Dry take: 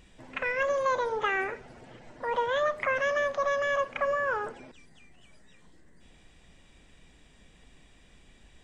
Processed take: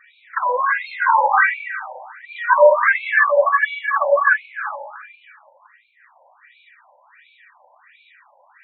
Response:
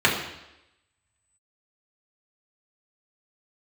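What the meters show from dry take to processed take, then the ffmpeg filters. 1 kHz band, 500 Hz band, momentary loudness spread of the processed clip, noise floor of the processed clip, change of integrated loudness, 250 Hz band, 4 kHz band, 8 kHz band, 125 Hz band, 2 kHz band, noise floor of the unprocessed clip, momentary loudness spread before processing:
+13.5 dB, +10.0 dB, 16 LU, -56 dBFS, +12.0 dB, under -20 dB, +2.5 dB, n/a, under -30 dB, +13.5 dB, -58 dBFS, 9 LU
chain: -filter_complex "[0:a]highpass=460[a];[1:a]atrim=start_sample=2205,asetrate=24255,aresample=44100[b];[a][b]afir=irnorm=-1:irlink=0,afftfilt=real='re*between(b*sr/1024,700*pow(3100/700,0.5+0.5*sin(2*PI*1.4*pts/sr))/1.41,700*pow(3100/700,0.5+0.5*sin(2*PI*1.4*pts/sr))*1.41)':imag='im*between(b*sr/1024,700*pow(3100/700,0.5+0.5*sin(2*PI*1.4*pts/sr))/1.41,700*pow(3100/700,0.5+0.5*sin(2*PI*1.4*pts/sr))*1.41)':win_size=1024:overlap=0.75,volume=-5dB"

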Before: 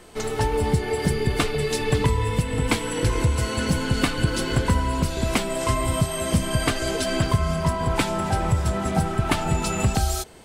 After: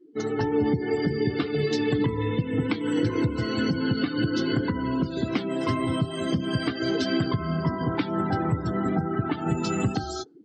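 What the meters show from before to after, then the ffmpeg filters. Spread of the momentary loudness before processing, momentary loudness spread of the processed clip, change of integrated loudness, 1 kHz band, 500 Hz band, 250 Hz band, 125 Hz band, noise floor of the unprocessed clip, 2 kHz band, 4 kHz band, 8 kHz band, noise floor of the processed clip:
2 LU, 3 LU, -2.5 dB, -5.5 dB, -2.0 dB, +2.0 dB, -5.0 dB, -29 dBFS, -4.5 dB, -5.0 dB, -15.5 dB, -34 dBFS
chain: -af "highpass=f=110:w=0.5412,highpass=f=110:w=1.3066,equalizer=f=300:t=q:w=4:g=10,equalizer=f=610:t=q:w=4:g=-8,equalizer=f=950:t=q:w=4:g=-6,equalizer=f=2.5k:t=q:w=4:g=-4,lowpass=f=6.3k:w=0.5412,lowpass=f=6.3k:w=1.3066,alimiter=limit=-14dB:level=0:latency=1:release=156,afftdn=nr=35:nf=-36"

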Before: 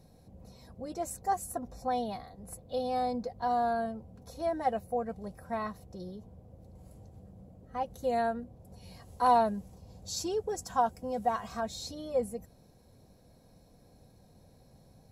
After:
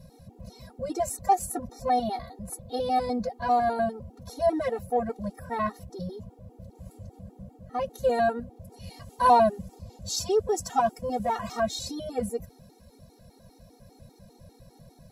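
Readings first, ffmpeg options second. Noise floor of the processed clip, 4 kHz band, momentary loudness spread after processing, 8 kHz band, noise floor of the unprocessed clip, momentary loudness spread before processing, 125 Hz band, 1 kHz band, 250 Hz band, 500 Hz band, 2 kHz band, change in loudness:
-57 dBFS, +6.0 dB, 21 LU, +6.5 dB, -61 dBFS, 19 LU, +6.5 dB, +5.0 dB, +5.0 dB, +6.0 dB, +6.0 dB, +5.5 dB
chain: -filter_complex "[0:a]asplit=2[a][b];[b]asoftclip=type=tanh:threshold=-31dB,volume=-11.5dB[c];[a][c]amix=inputs=2:normalize=0,afftfilt=real='re*gt(sin(2*PI*5*pts/sr)*(1-2*mod(floor(b*sr/1024/240),2)),0)':imag='im*gt(sin(2*PI*5*pts/sr)*(1-2*mod(floor(b*sr/1024/240),2)),0)':win_size=1024:overlap=0.75,volume=8dB"

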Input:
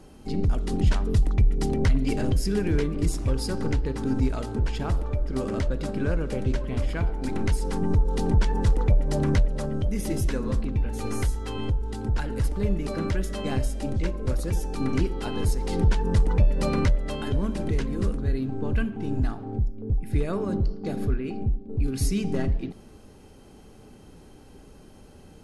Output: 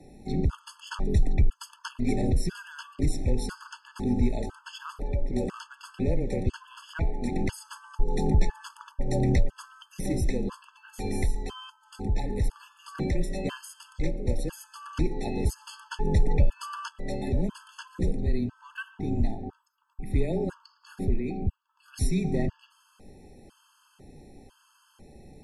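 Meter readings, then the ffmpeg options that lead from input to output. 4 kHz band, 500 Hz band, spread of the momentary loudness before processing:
-3.5 dB, -3.5 dB, 6 LU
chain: -af "afreqshift=-19,afftfilt=real='re*gt(sin(2*PI*1*pts/sr)*(1-2*mod(floor(b*sr/1024/870),2)),0)':imag='im*gt(sin(2*PI*1*pts/sr)*(1-2*mod(floor(b*sr/1024/870),2)),0)':win_size=1024:overlap=0.75"

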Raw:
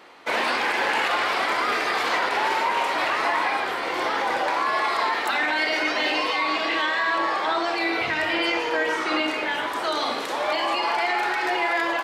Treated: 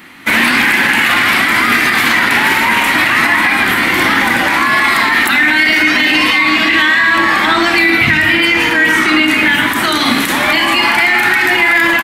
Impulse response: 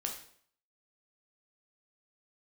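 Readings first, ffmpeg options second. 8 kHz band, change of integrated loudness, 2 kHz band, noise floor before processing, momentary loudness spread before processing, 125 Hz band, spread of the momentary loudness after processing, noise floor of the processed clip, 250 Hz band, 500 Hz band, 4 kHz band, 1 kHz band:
+17.0 dB, +13.5 dB, +16.0 dB, -28 dBFS, 3 LU, n/a, 2 LU, -14 dBFS, +16.0 dB, +5.0 dB, +13.5 dB, +8.0 dB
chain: -af "highshelf=f=2.9k:g=9,dynaudnorm=f=190:g=3:m=5.5dB,firequalizer=gain_entry='entry(240,0);entry(450,-23);entry(1900,-8);entry(2700,-13);entry(4900,-20);entry(12000,-6)':delay=0.05:min_phase=1,alimiter=level_in=22dB:limit=-1dB:release=50:level=0:latency=1,volume=-1dB"

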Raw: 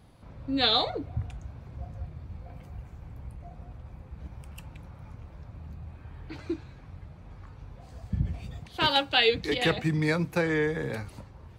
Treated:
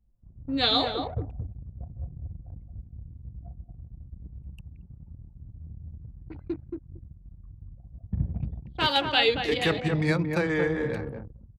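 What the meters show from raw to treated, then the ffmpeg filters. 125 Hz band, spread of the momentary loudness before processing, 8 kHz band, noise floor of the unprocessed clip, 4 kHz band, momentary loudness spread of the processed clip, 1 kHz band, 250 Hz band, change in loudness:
+1.0 dB, 23 LU, -1.5 dB, -49 dBFS, 0.0 dB, 22 LU, +1.0 dB, +1.5 dB, +0.5 dB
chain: -filter_complex "[0:a]asplit=2[a][b];[b]adelay=227,lowpass=f=1.3k:p=1,volume=-4dB,asplit=2[c][d];[d]adelay=227,lowpass=f=1.3k:p=1,volume=0.19,asplit=2[e][f];[f]adelay=227,lowpass=f=1.3k:p=1,volume=0.19[g];[a][c][e][g]amix=inputs=4:normalize=0,anlmdn=1.58"

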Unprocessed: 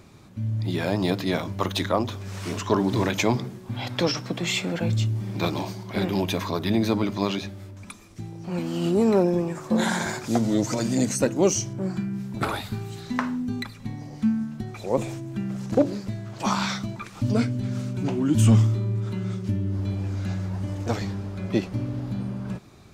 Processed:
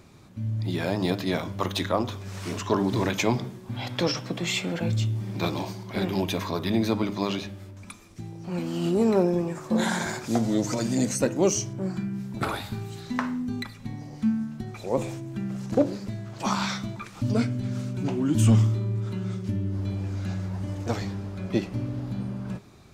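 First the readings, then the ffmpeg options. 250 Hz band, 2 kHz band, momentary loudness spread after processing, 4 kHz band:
-1.5 dB, -2.0 dB, 11 LU, -1.5 dB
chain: -af "bandreject=f=102.6:t=h:w=4,bandreject=f=205.2:t=h:w=4,bandreject=f=307.8:t=h:w=4,bandreject=f=410.4:t=h:w=4,bandreject=f=513:t=h:w=4,bandreject=f=615.6:t=h:w=4,bandreject=f=718.2:t=h:w=4,bandreject=f=820.8:t=h:w=4,bandreject=f=923.4:t=h:w=4,bandreject=f=1.026k:t=h:w=4,bandreject=f=1.1286k:t=h:w=4,bandreject=f=1.2312k:t=h:w=4,bandreject=f=1.3338k:t=h:w=4,bandreject=f=1.4364k:t=h:w=4,bandreject=f=1.539k:t=h:w=4,bandreject=f=1.6416k:t=h:w=4,bandreject=f=1.7442k:t=h:w=4,bandreject=f=1.8468k:t=h:w=4,bandreject=f=1.9494k:t=h:w=4,bandreject=f=2.052k:t=h:w=4,bandreject=f=2.1546k:t=h:w=4,bandreject=f=2.2572k:t=h:w=4,bandreject=f=2.3598k:t=h:w=4,bandreject=f=2.4624k:t=h:w=4,bandreject=f=2.565k:t=h:w=4,bandreject=f=2.6676k:t=h:w=4,bandreject=f=2.7702k:t=h:w=4,bandreject=f=2.8728k:t=h:w=4,bandreject=f=2.9754k:t=h:w=4,bandreject=f=3.078k:t=h:w=4,bandreject=f=3.1806k:t=h:w=4,bandreject=f=3.2832k:t=h:w=4,bandreject=f=3.3858k:t=h:w=4,bandreject=f=3.4884k:t=h:w=4,bandreject=f=3.591k:t=h:w=4,bandreject=f=3.6936k:t=h:w=4,volume=-1.5dB"

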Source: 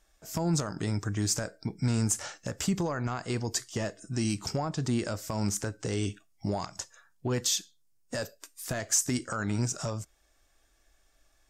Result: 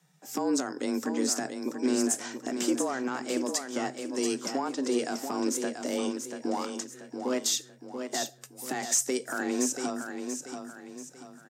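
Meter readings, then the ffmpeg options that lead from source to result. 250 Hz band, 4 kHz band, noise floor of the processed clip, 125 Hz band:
+3.0 dB, +0.5 dB, -54 dBFS, -21.5 dB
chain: -filter_complex "[0:a]afreqshift=130,asplit=2[a][b];[b]aecho=0:1:685|1370|2055|2740|3425:0.447|0.174|0.0679|0.0265|0.0103[c];[a][c]amix=inputs=2:normalize=0"

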